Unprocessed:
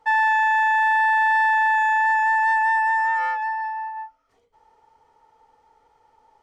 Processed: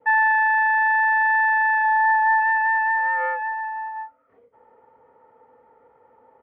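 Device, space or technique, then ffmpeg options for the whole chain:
bass cabinet: -filter_complex "[0:a]asplit=3[a][b][c];[a]afade=t=out:st=1.83:d=0.02[d];[b]aecho=1:1:2.1:0.77,afade=t=in:st=1.83:d=0.02,afade=t=out:st=2.4:d=0.02[e];[c]afade=t=in:st=2.4:d=0.02[f];[d][e][f]amix=inputs=3:normalize=0,highpass=f=69:w=0.5412,highpass=f=69:w=1.3066,equalizer=f=82:t=q:w=4:g=-8,equalizer=f=240:t=q:w=4:g=7,equalizer=f=520:t=q:w=4:g=10,equalizer=f=840:t=q:w=4:g=-5,lowpass=f=2k:w=0.5412,lowpass=f=2k:w=1.3066,adynamicequalizer=threshold=0.0158:dfrequency=1200:dqfactor=1.5:tfrequency=1200:tqfactor=1.5:attack=5:release=100:ratio=0.375:range=2.5:mode=cutabove:tftype=bell,volume=4.5dB"

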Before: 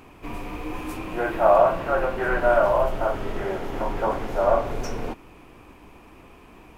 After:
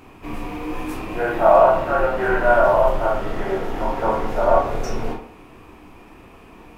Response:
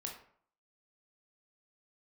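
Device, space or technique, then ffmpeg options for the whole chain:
bathroom: -filter_complex "[1:a]atrim=start_sample=2205[a];[0:a][a]afir=irnorm=-1:irlink=0,volume=5dB"

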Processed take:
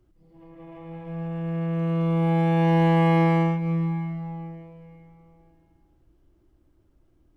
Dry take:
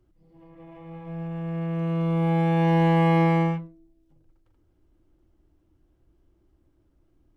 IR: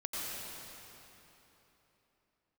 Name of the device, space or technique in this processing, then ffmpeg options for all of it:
ducked reverb: -filter_complex "[0:a]asplit=3[a][b][c];[1:a]atrim=start_sample=2205[d];[b][d]afir=irnorm=-1:irlink=0[e];[c]apad=whole_len=324588[f];[e][f]sidechaincompress=threshold=-33dB:ratio=8:attack=16:release=198,volume=-10dB[g];[a][g]amix=inputs=2:normalize=0"

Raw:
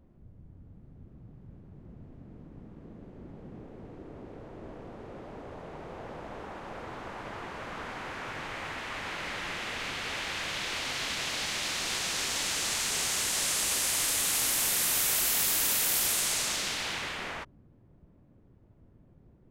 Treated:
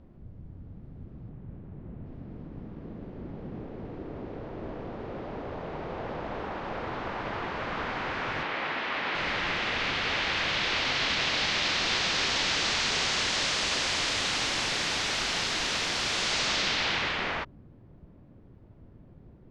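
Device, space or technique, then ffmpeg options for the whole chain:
synthesiser wavefolder: -filter_complex "[0:a]asettb=1/sr,asplit=3[a][b][c];[a]atrim=end=1.294[d];[b]atrim=start=1.29:end=2.06,asetpts=PTS-STARTPTS,afade=t=in:d=0.004:c=qsin,afade=t=out:st=0.766:d=0.004:c=qsin,lowpass=3.2k[e];[c]atrim=start=2.056[f];[d][e]acrossfade=d=0.004:c1=hsin:c2=qsin[g];[g][f]acrossfade=d=0.004:c1=qsin:c2=hsin,asettb=1/sr,asplit=3[h][i][j];[h]atrim=end=8.434[k];[i]atrim=start=8.43:end=9.15,asetpts=PTS-STARTPTS,afade=t=in:d=0.004:c=qsin,afade=t=out:st=0.716:d=0.004:c=qsin,acrossover=split=160 5500:gain=0.126 1 0.2[l][m][n];[l][m][n]amix=inputs=3:normalize=0[o];[j]atrim=start=9.146[p];[k][o]acrossfade=d=0.004:c1=hsin:c2=qsin[q];[q][p]acrossfade=d=0.004:c1=qsin:c2=hsin,aeval=exprs='0.0631*(abs(mod(val(0)/0.0631+3,4)-2)-1)':c=same,lowpass=f=5.1k:w=0.5412,lowpass=f=5.1k:w=1.3066,volume=6.5dB"

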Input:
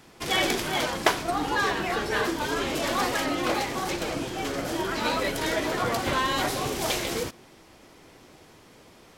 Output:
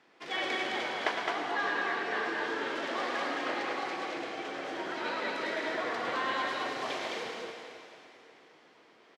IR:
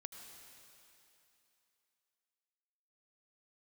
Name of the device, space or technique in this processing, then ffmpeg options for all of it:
station announcement: -filter_complex "[0:a]highpass=310,lowpass=3.9k,equalizer=f=1.8k:t=o:w=0.47:g=4,aecho=1:1:107.9|212.8:0.447|0.708[a];[1:a]atrim=start_sample=2205[b];[a][b]afir=irnorm=-1:irlink=0,volume=-4dB"

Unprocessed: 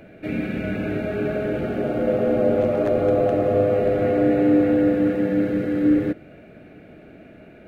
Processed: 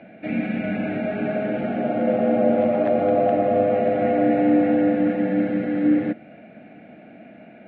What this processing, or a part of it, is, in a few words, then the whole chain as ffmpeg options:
kitchen radio: -af "highpass=170,equalizer=f=220:t=q:w=4:g=7,equalizer=f=400:t=q:w=4:g=-9,equalizer=f=740:t=q:w=4:g=8,equalizer=f=1.2k:t=q:w=4:g=-4,equalizer=f=2.1k:t=q:w=4:g=3,lowpass=f=3.5k:w=0.5412,lowpass=f=3.5k:w=1.3066"

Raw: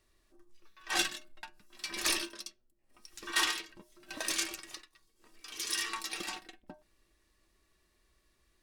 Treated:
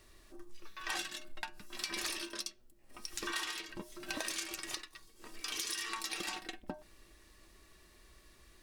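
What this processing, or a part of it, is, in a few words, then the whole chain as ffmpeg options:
serial compression, leveller first: -af "acompressor=threshold=-38dB:ratio=2,acompressor=threshold=-48dB:ratio=5,volume=11dB"

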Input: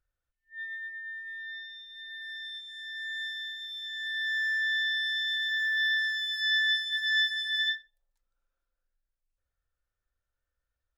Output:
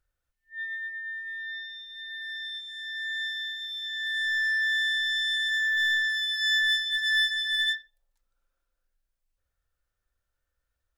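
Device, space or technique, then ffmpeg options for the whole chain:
parallel distortion: -filter_complex "[0:a]asplit=2[a][b];[b]asoftclip=type=hard:threshold=-30.5dB,volume=-5dB[c];[a][c]amix=inputs=2:normalize=0"

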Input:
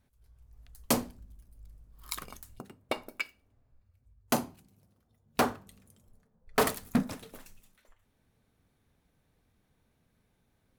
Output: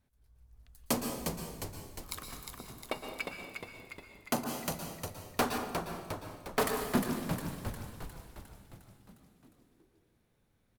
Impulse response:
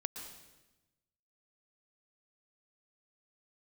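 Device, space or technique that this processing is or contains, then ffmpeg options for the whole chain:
bathroom: -filter_complex "[1:a]atrim=start_sample=2205[a];[0:a][a]afir=irnorm=-1:irlink=0,asplit=9[b][c][d][e][f][g][h][i][j];[c]adelay=356,afreqshift=-71,volume=-5.5dB[k];[d]adelay=712,afreqshift=-142,volume=-10.1dB[l];[e]adelay=1068,afreqshift=-213,volume=-14.7dB[m];[f]adelay=1424,afreqshift=-284,volume=-19.2dB[n];[g]adelay=1780,afreqshift=-355,volume=-23.8dB[o];[h]adelay=2136,afreqshift=-426,volume=-28.4dB[p];[i]adelay=2492,afreqshift=-497,volume=-33dB[q];[j]adelay=2848,afreqshift=-568,volume=-37.6dB[r];[b][k][l][m][n][o][p][q][r]amix=inputs=9:normalize=0,asettb=1/sr,asplit=3[s][t][u];[s]atrim=end=4.444[v];[t]atrim=start=4.44:end=5.58,asetpts=PTS-STARTPTS,afade=t=in:d=0.004:c=qsin,afade=t=out:st=1.136:d=0.004:c=qsin,adynamicequalizer=threshold=0.00631:dfrequency=2000:dqfactor=0.7:tfrequency=2000:tqfactor=0.7:attack=5:release=100:ratio=0.375:range=2.5:mode=boostabove:tftype=highshelf[w];[u]atrim=start=5.576[x];[v][w]acrossfade=d=0.004:c1=hsin:c2=qsin[y];[y][x]acrossfade=d=0.004:c1=qsin:c2=hsin,volume=-2.5dB"

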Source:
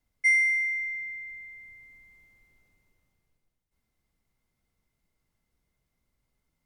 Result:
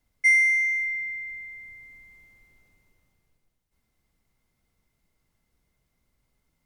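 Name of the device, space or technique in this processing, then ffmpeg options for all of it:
parallel distortion: -filter_complex "[0:a]asplit=2[a][b];[b]asoftclip=type=hard:threshold=-30dB,volume=-11.5dB[c];[a][c]amix=inputs=2:normalize=0,asettb=1/sr,asplit=3[d][e][f];[d]atrim=end=1.454[g];[e]atrim=start=1.45:end=1.85,asetpts=PTS-STARTPTS,afade=t=in:d=0.004:c=qsin,afade=t=out:st=0.396:d=0.004:c=qsin,bandreject=f=2.7k:w=12[h];[f]atrim=start=1.846[i];[g][h]acrossfade=d=0.004:c1=hsin:c2=qsin[j];[j][i]acrossfade=d=0.004:c1=qsin:c2=hsin,volume=2.5dB"

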